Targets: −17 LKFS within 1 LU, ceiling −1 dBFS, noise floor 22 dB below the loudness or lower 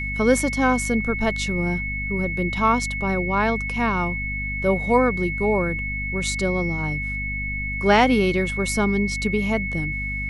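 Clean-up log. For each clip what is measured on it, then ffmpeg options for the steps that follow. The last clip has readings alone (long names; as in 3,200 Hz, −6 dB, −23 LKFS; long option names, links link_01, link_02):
mains hum 50 Hz; hum harmonics up to 250 Hz; level of the hum −28 dBFS; interfering tone 2,200 Hz; level of the tone −27 dBFS; integrated loudness −22.0 LKFS; sample peak −4.5 dBFS; target loudness −17.0 LKFS
→ -af "bandreject=frequency=50:width_type=h:width=6,bandreject=frequency=100:width_type=h:width=6,bandreject=frequency=150:width_type=h:width=6,bandreject=frequency=200:width_type=h:width=6,bandreject=frequency=250:width_type=h:width=6"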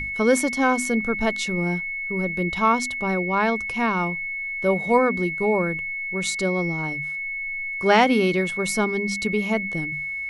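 mains hum none found; interfering tone 2,200 Hz; level of the tone −27 dBFS
→ -af "bandreject=frequency=2200:width=30"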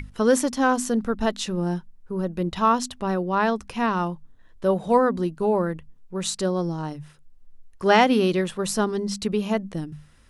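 interfering tone none found; integrated loudness −24.0 LKFS; sample peak −5.0 dBFS; target loudness −17.0 LKFS
→ -af "volume=7dB,alimiter=limit=-1dB:level=0:latency=1"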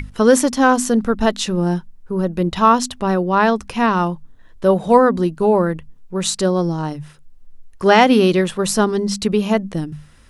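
integrated loudness −17.0 LKFS; sample peak −1.0 dBFS; background noise floor −45 dBFS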